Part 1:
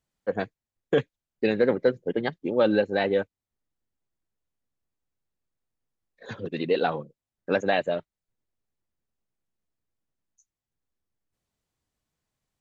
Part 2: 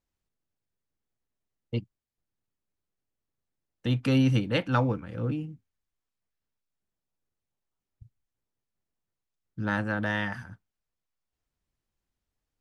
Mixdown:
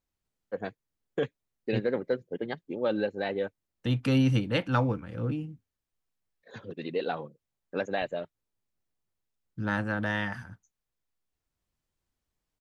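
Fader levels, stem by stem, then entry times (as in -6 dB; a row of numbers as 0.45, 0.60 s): -7.0, -1.0 dB; 0.25, 0.00 s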